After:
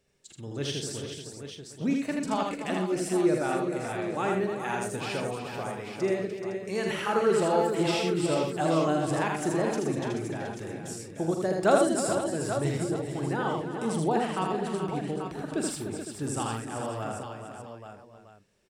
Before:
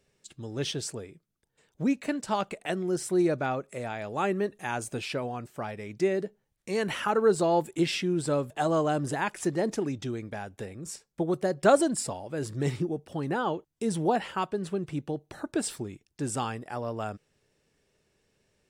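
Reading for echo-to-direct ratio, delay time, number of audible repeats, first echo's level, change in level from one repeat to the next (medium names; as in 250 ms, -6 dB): 0.5 dB, 43 ms, 11, -9.5 dB, no regular repeats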